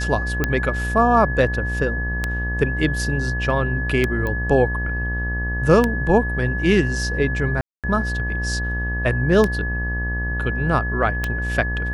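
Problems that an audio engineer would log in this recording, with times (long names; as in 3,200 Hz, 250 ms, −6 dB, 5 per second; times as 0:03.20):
mains buzz 60 Hz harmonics 20 −25 dBFS
scratch tick 33 1/3 rpm −6 dBFS
whistle 1,700 Hz −26 dBFS
0:04.27: click −14 dBFS
0:07.61–0:07.84: drop-out 227 ms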